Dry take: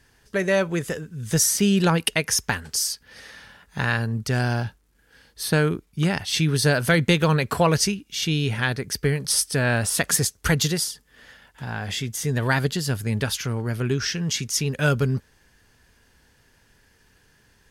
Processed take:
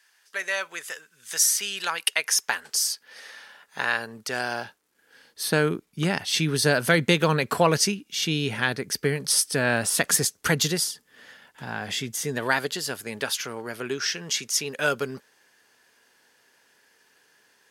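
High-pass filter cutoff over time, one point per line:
0:01.92 1,200 Hz
0:02.76 470 Hz
0:04.51 470 Hz
0:05.70 190 Hz
0:12.12 190 Hz
0:12.63 400 Hz

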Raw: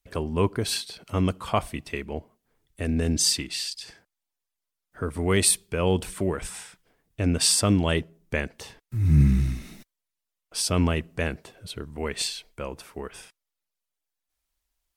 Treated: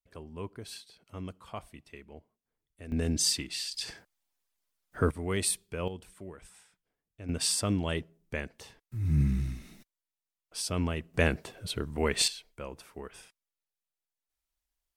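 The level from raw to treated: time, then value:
−16.5 dB
from 0:02.92 −5 dB
from 0:03.74 +3.5 dB
from 0:05.11 −9 dB
from 0:05.88 −18.5 dB
from 0:07.29 −8 dB
from 0:11.14 +2 dB
from 0:12.28 −7 dB

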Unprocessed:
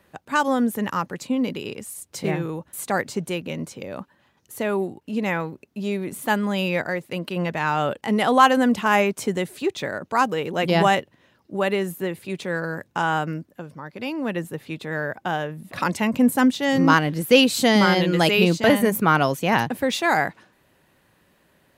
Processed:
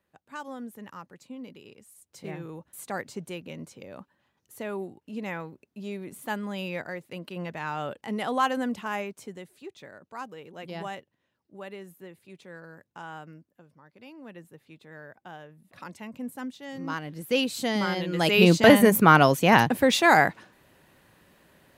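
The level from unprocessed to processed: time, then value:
0:01.90 −18 dB
0:02.58 −10 dB
0:08.61 −10 dB
0:09.50 −18.5 dB
0:16.79 −18.5 dB
0:17.36 −10 dB
0:18.08 −10 dB
0:18.49 +2 dB

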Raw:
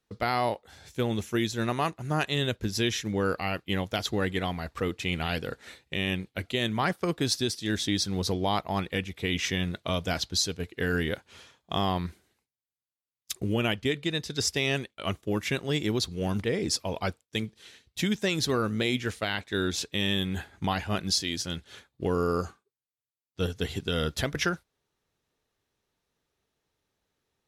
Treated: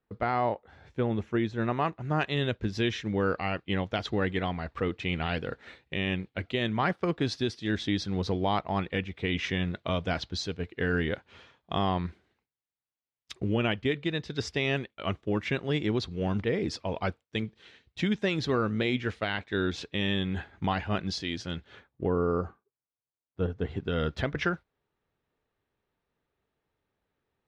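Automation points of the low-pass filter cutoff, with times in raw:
0:01.49 1,800 Hz
0:02.25 3,000 Hz
0:21.56 3,000 Hz
0:22.13 1,300 Hz
0:23.64 1,300 Hz
0:24.04 2,500 Hz

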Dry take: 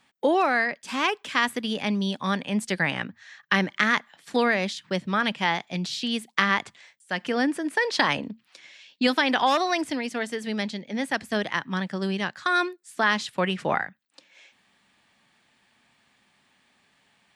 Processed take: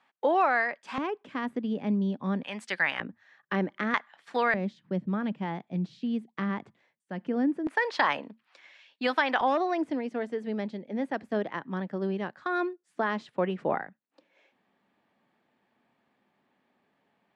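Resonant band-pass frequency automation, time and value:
resonant band-pass, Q 0.8
950 Hz
from 0:00.98 260 Hz
from 0:02.43 1,500 Hz
from 0:03.00 370 Hz
from 0:03.94 1,100 Hz
from 0:04.54 210 Hz
from 0:07.67 980 Hz
from 0:09.41 400 Hz

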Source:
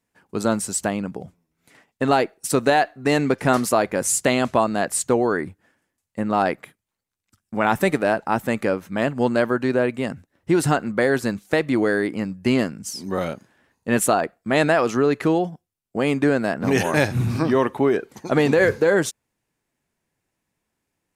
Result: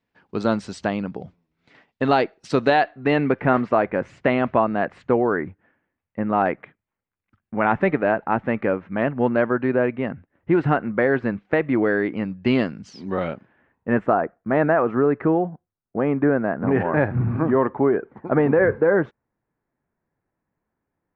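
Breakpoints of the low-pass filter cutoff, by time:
low-pass filter 24 dB per octave
0:02.64 4,500 Hz
0:03.42 2,400 Hz
0:11.75 2,400 Hz
0:12.75 4,300 Hz
0:14.11 1,700 Hz

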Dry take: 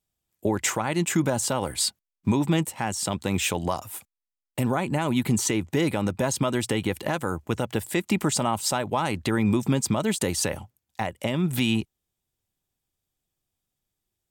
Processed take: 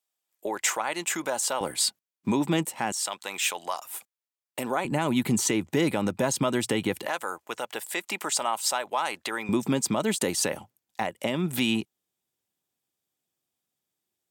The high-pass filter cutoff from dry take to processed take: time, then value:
560 Hz
from 0:01.61 210 Hz
from 0:02.92 820 Hz
from 0:03.91 380 Hz
from 0:04.85 150 Hz
from 0:07.06 650 Hz
from 0:09.49 200 Hz

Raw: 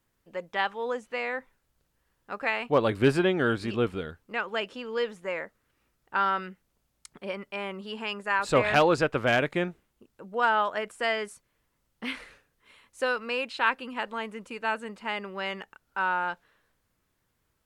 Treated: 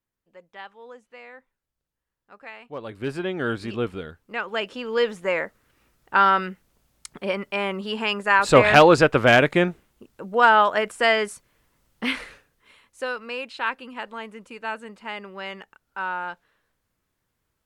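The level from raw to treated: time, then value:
0:02.76 −12.5 dB
0:03.50 0 dB
0:04.19 0 dB
0:05.15 +8.5 dB
0:12.19 +8.5 dB
0:13.04 −1.5 dB

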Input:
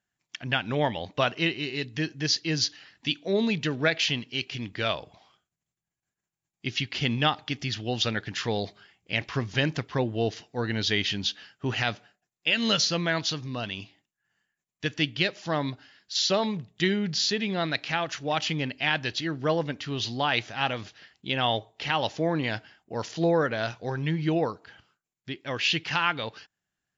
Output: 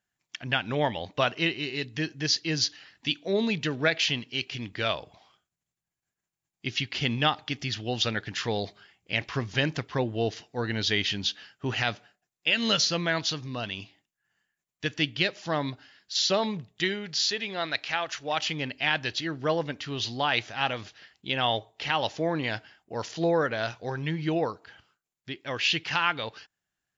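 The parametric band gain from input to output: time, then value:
parametric band 180 Hz 1.9 octaves
0:16.59 −2 dB
0:17.06 −12.5 dB
0:18.16 −12.5 dB
0:18.72 −3.5 dB

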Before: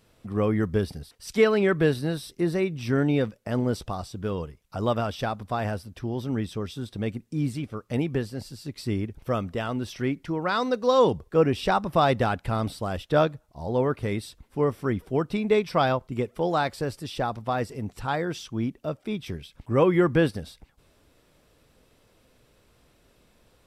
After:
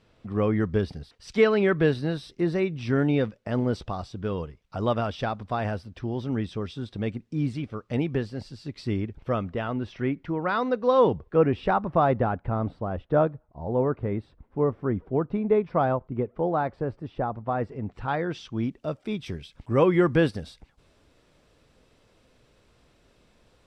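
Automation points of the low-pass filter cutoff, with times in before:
0:08.88 4,500 Hz
0:09.71 2,500 Hz
0:11.30 2,500 Hz
0:12.33 1,200 Hz
0:17.39 1,200 Hz
0:18.27 3,100 Hz
0:18.87 7,400 Hz

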